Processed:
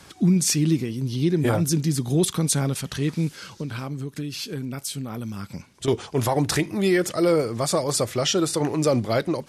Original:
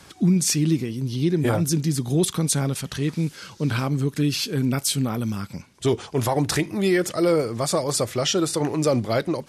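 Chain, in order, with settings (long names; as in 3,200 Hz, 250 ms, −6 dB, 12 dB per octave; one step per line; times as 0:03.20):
0:03.44–0:05.88: downward compressor, threshold −28 dBFS, peak gain reduction 10.5 dB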